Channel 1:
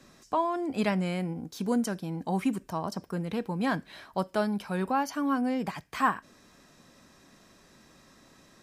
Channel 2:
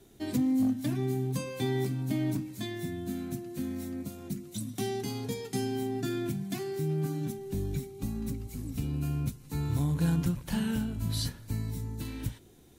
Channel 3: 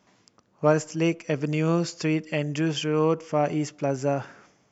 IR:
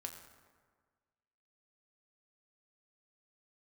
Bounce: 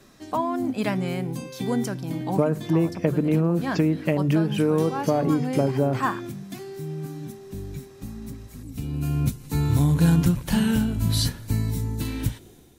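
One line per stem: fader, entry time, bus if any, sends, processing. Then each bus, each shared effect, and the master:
+1.5 dB, 0.00 s, bus A, no send, none
+1.5 dB, 0.00 s, no bus, no send, level rider gain up to 7.5 dB; auto duck -11 dB, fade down 0.35 s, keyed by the first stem
+3.0 dB, 1.75 s, bus A, no send, low-pass that closes with the level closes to 1.7 kHz, closed at -22.5 dBFS; bass shelf 470 Hz +10.5 dB
bus A: 0.0 dB, hum notches 50/100/150 Hz; compression 12:1, threshold -17 dBFS, peak gain reduction 11.5 dB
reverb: none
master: none

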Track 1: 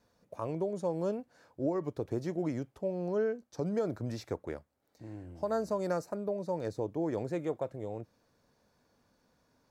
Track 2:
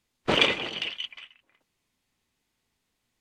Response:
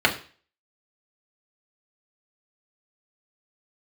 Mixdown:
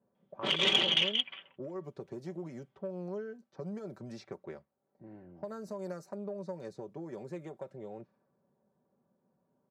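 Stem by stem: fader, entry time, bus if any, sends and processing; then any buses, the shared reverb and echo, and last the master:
-4.0 dB, 0.00 s, no send, level-controlled noise filter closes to 720 Hz, open at -30.5 dBFS; compression, threshold -35 dBFS, peak gain reduction 9 dB
-3.5 dB, 0.15 s, no send, level-controlled noise filter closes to 1.1 kHz, open at -20.5 dBFS; compressor with a negative ratio -27 dBFS, ratio -0.5; peaking EQ 3.3 kHz +13 dB 0.28 oct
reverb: none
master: high-pass 91 Hz 24 dB/octave; comb 5.2 ms, depth 64%; transformer saturation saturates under 1.7 kHz

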